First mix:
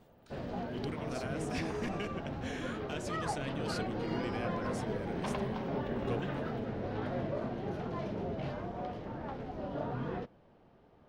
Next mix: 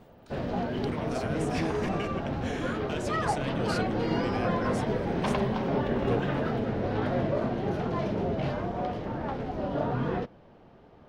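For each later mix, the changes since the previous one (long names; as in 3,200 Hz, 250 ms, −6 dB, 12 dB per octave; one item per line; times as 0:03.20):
speech +3.5 dB
background +8.0 dB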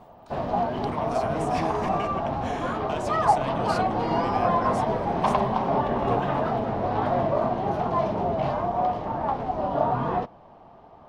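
master: add flat-topped bell 870 Hz +10.5 dB 1.1 octaves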